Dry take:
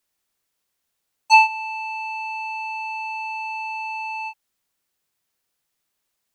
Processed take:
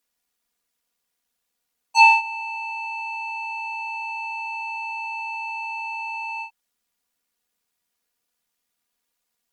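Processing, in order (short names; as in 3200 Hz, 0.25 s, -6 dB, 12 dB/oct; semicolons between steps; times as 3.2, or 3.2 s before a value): added harmonics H 4 -39 dB, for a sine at -3 dBFS; granular stretch 1.5×, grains 25 ms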